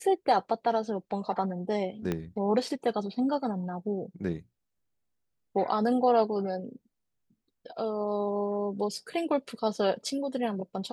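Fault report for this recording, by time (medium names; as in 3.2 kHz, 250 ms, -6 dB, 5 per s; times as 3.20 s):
2.12 s: pop -17 dBFS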